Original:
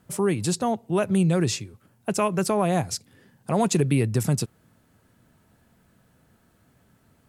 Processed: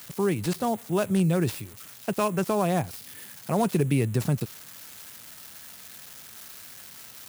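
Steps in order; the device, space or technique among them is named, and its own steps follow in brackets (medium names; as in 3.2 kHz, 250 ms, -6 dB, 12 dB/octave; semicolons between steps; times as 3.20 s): budget class-D amplifier (dead-time distortion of 0.098 ms; zero-crossing glitches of -25 dBFS); trim -2 dB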